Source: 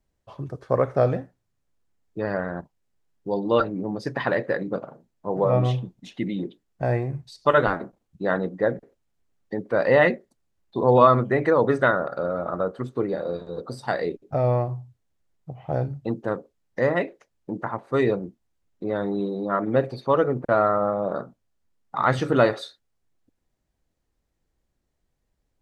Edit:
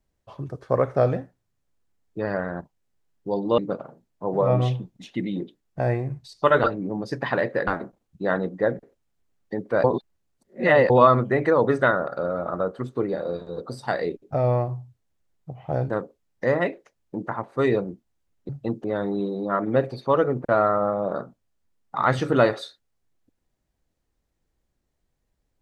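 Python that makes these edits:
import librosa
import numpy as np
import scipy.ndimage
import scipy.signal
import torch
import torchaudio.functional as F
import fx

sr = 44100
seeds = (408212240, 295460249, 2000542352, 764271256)

y = fx.edit(x, sr, fx.move(start_s=3.58, length_s=1.03, to_s=7.67),
    fx.reverse_span(start_s=9.84, length_s=1.06),
    fx.move(start_s=15.9, length_s=0.35, to_s=18.84), tone=tone)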